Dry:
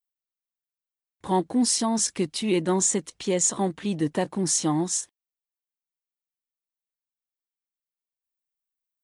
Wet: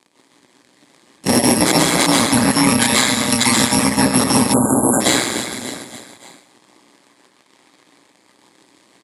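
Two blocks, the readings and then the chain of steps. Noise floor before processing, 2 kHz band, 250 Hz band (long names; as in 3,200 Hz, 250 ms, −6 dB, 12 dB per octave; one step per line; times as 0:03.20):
below −85 dBFS, +21.0 dB, +10.5 dB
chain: samples in bit-reversed order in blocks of 128 samples
on a send: repeating echo 291 ms, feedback 53%, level −21 dB
on the sum: gate pattern "x.x..x.x.x.x" 131 BPM −12 dB
surface crackle 120 per second −59 dBFS
dense smooth reverb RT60 0.73 s, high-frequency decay 0.95×, pre-delay 115 ms, DRR −4 dB
in parallel at −9.5 dB: sample-and-hold swept by an LFO 20×, swing 160% 0.23 Hz
on the sum: high-shelf EQ 4,100 Hz −7 dB
ring modulation 62 Hz
loudspeaker in its box 200–9,800 Hz, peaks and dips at 290 Hz +5 dB, 460 Hz −4 dB, 690 Hz −5 dB, 1,400 Hz −9 dB, 2,800 Hz −8 dB, 5,800 Hz −6 dB
downward compressor 4 to 1, threshold −43 dBFS, peak gain reduction 15.5 dB
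time-frequency box erased 0:04.53–0:05.01, 1,600–6,900 Hz
boost into a limiter +31.5 dB
level −1 dB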